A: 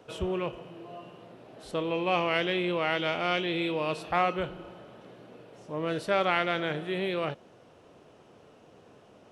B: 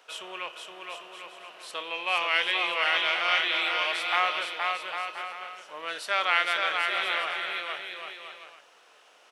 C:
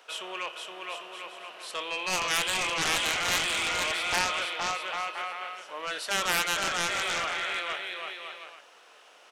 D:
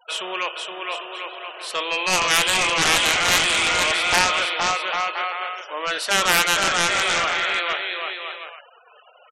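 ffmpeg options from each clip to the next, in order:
-filter_complex "[0:a]highpass=1.3k,asplit=2[a][b];[b]aecho=0:1:470|799|1029|1191|1303:0.631|0.398|0.251|0.158|0.1[c];[a][c]amix=inputs=2:normalize=0,volume=6dB"
-af "highpass=140,aeval=exprs='0.355*(cos(1*acos(clip(val(0)/0.355,-1,1)))-cos(1*PI/2))+0.178*(cos(7*acos(clip(val(0)/0.355,-1,1)))-cos(7*PI/2))':c=same,volume=-5.5dB"
-af "afftfilt=real='re*gte(hypot(re,im),0.00447)':imag='im*gte(hypot(re,im),0.00447)':win_size=1024:overlap=0.75,volume=9dB"

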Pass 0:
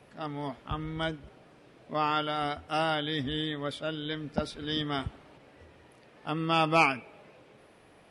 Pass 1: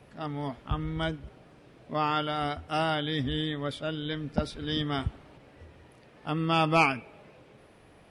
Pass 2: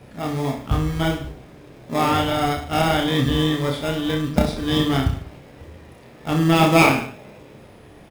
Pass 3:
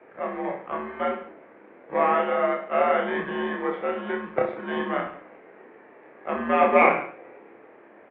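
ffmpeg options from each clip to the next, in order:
-af "lowshelf=f=150:g=8.5"
-filter_complex "[0:a]asplit=2[a][b];[b]acrusher=samples=30:mix=1:aa=0.000001,volume=-4dB[c];[a][c]amix=inputs=2:normalize=0,aecho=1:1:30|64.5|104.2|149.8|202.3:0.631|0.398|0.251|0.158|0.1,volume=5dB"
-af "highpass=f=430:t=q:w=0.5412,highpass=f=430:t=q:w=1.307,lowpass=f=2.3k:t=q:w=0.5176,lowpass=f=2.3k:t=q:w=0.7071,lowpass=f=2.3k:t=q:w=1.932,afreqshift=-91"

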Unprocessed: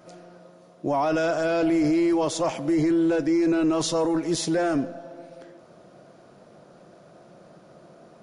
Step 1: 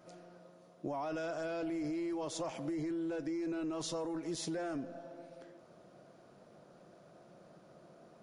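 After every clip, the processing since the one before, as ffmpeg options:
-af "acompressor=threshold=-27dB:ratio=6,volume=-8.5dB"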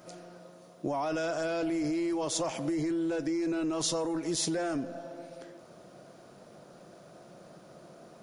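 -af "highshelf=f=4.6k:g=7.5,volume=6.5dB"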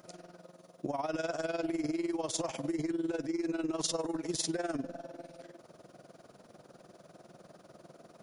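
-af "tremolo=f=20:d=0.788"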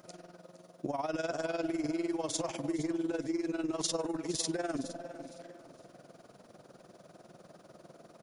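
-af "aecho=1:1:462|924|1386:0.178|0.0516|0.015"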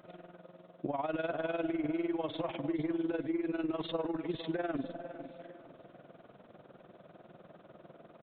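-af "aresample=8000,aresample=44100"

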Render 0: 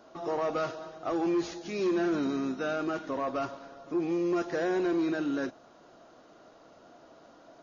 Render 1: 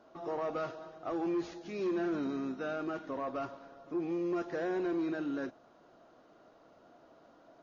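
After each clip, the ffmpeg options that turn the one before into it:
-af "lowpass=f=3.1k:p=1,volume=-5dB"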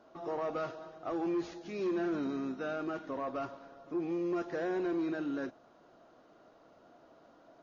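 -af anull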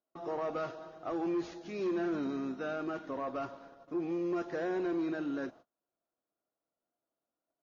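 -af "agate=range=-32dB:threshold=-53dB:ratio=16:detection=peak"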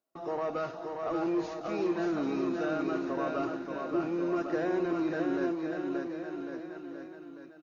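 -filter_complex "[0:a]bandreject=f=3.3k:w=18,asplit=2[a][b];[b]aecho=0:1:580|1102|1572|1995|2375:0.631|0.398|0.251|0.158|0.1[c];[a][c]amix=inputs=2:normalize=0,volume=2.5dB"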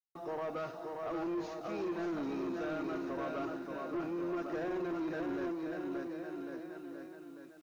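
-af "acrusher=bits=10:mix=0:aa=0.000001,asoftclip=type=tanh:threshold=-28dB,volume=-3.5dB"

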